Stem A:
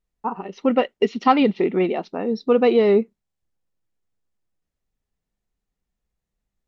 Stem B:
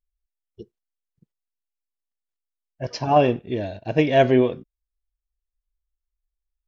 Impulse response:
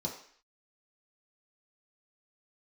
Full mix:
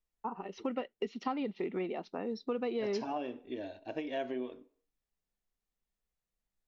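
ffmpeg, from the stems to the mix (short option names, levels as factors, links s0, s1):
-filter_complex "[0:a]acrossover=split=320|1200[s0][s1][s2];[s0]acompressor=threshold=0.0398:ratio=4[s3];[s1]acompressor=threshold=0.0282:ratio=4[s4];[s2]acompressor=threshold=0.00708:ratio=4[s5];[s3][s4][s5]amix=inputs=3:normalize=0,volume=0.501[s6];[1:a]lowshelf=f=220:t=q:w=3:g=-8,acompressor=threshold=0.112:ratio=10,volume=0.282,asplit=2[s7][s8];[s8]volume=0.178[s9];[2:a]atrim=start_sample=2205[s10];[s9][s10]afir=irnorm=-1:irlink=0[s11];[s6][s7][s11]amix=inputs=3:normalize=0,equalizer=f=95:w=0.32:g=-7"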